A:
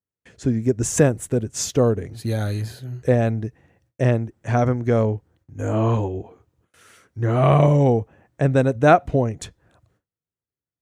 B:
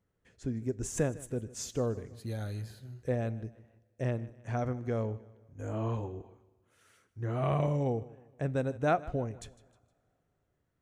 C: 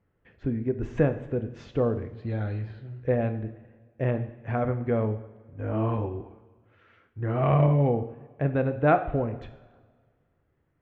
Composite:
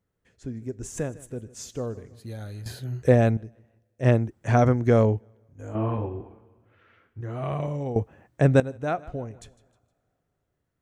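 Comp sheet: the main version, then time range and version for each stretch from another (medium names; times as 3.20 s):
B
2.66–3.37 s: from A
4.05–5.20 s: from A, crossfade 0.06 s
5.75–7.21 s: from C
7.96–8.60 s: from A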